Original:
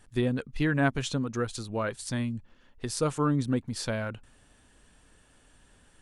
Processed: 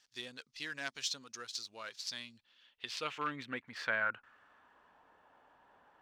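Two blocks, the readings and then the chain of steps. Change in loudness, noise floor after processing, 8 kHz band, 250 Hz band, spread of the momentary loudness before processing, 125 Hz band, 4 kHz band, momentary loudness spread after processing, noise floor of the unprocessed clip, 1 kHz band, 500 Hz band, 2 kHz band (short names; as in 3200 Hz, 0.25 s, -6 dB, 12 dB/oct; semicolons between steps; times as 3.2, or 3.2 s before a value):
-9.5 dB, -74 dBFS, -7.0 dB, -22.0 dB, 9 LU, -27.5 dB, -1.0 dB, 12 LU, -61 dBFS, -6.5 dB, -15.0 dB, -2.0 dB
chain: median filter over 5 samples; hard clip -16.5 dBFS, distortion -27 dB; band-pass sweep 5300 Hz -> 890 Hz, 1.94–5.01; gain +7.5 dB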